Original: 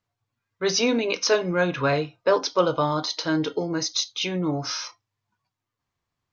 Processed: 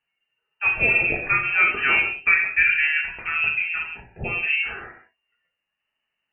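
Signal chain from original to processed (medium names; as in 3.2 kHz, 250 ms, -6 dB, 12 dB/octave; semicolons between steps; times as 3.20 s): frequency inversion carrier 2.9 kHz; gated-style reverb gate 230 ms falling, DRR 0.5 dB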